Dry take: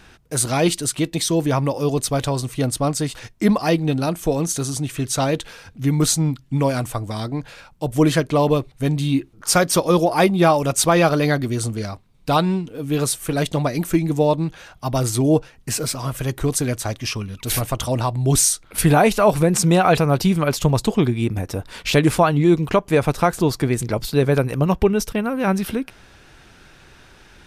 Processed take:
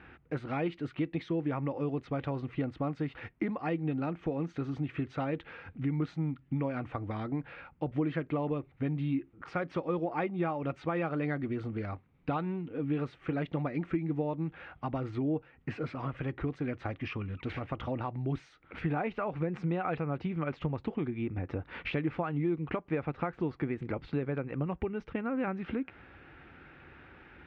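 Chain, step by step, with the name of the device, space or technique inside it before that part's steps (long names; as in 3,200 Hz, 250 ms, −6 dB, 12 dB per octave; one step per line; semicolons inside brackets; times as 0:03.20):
bass amplifier (downward compressor 5 to 1, threshold −26 dBFS, peak gain reduction 14.5 dB; loudspeaker in its box 80–2,200 Hz, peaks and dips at 120 Hz −9 dB, 200 Hz −7 dB, 420 Hz −5 dB, 640 Hz −8 dB, 1,000 Hz −7 dB, 1,600 Hz −4 dB)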